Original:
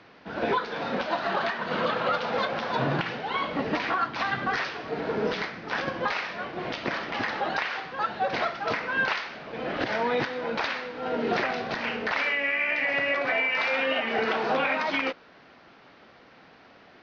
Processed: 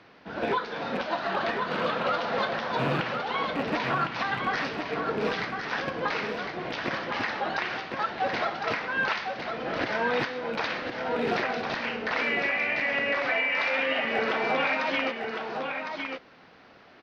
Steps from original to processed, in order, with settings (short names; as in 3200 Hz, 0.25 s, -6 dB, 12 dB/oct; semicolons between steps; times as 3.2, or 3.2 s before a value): rattling part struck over -33 dBFS, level -26 dBFS; echo 1.057 s -5.5 dB; gain -1.5 dB